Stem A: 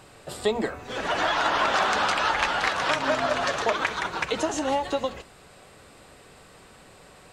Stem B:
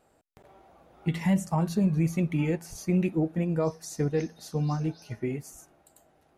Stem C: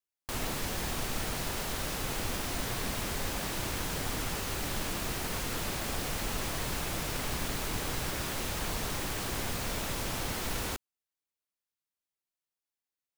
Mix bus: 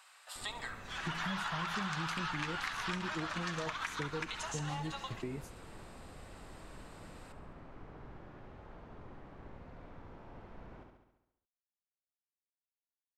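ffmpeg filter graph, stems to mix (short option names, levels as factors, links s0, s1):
-filter_complex "[0:a]highpass=f=960:w=0.5412,highpass=f=960:w=1.3066,volume=0.473,asplit=2[s0][s1];[s1]volume=0.178[s2];[1:a]volume=1.12[s3];[2:a]lowpass=1200,volume=0.355,asplit=2[s4][s5];[s5]volume=0.422[s6];[s3][s4]amix=inputs=2:normalize=0,agate=range=0.0178:threshold=0.0126:ratio=16:detection=peak,acompressor=threshold=0.00316:ratio=1.5,volume=1[s7];[s2][s6]amix=inputs=2:normalize=0,aecho=0:1:69|138|207|276|345|414|483|552|621|690:1|0.6|0.36|0.216|0.13|0.0778|0.0467|0.028|0.0168|0.0101[s8];[s0][s7][s8]amix=inputs=3:normalize=0,acompressor=threshold=0.0158:ratio=3"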